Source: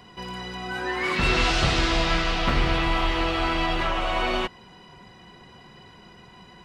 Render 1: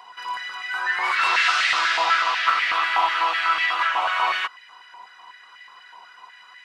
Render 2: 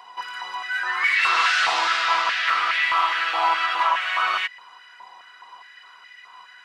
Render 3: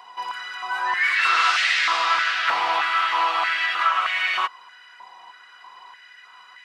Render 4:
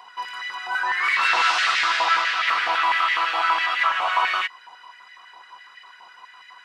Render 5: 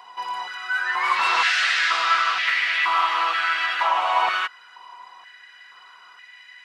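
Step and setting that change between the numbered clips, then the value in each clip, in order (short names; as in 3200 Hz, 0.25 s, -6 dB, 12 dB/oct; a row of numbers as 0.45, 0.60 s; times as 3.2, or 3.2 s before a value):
stepped high-pass, rate: 8.1, 4.8, 3.2, 12, 2.1 Hz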